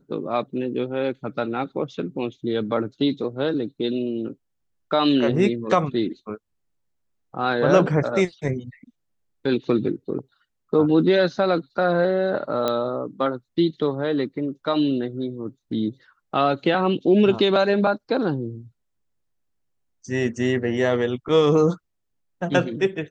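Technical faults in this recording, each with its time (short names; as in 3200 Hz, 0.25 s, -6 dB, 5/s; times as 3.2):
12.68 pop -10 dBFS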